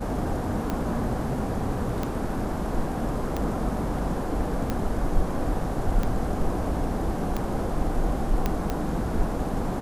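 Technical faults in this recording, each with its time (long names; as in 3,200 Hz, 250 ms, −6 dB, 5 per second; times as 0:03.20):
scratch tick 45 rpm −14 dBFS
0:08.46: click −11 dBFS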